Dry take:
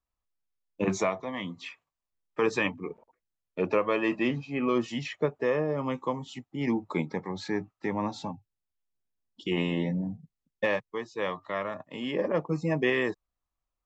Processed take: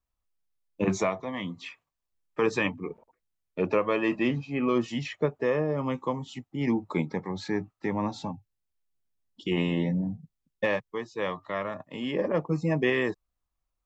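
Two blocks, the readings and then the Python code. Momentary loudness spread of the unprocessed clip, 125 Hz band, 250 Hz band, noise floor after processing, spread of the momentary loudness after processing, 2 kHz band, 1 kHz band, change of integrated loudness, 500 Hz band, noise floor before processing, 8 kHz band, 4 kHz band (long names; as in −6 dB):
13 LU, +3.0 dB, +1.5 dB, −83 dBFS, 12 LU, 0.0 dB, 0.0 dB, +1.0 dB, +0.5 dB, below −85 dBFS, can't be measured, 0.0 dB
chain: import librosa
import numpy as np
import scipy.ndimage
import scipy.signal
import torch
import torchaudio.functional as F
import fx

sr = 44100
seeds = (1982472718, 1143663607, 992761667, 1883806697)

y = fx.low_shelf(x, sr, hz=180.0, db=5.0)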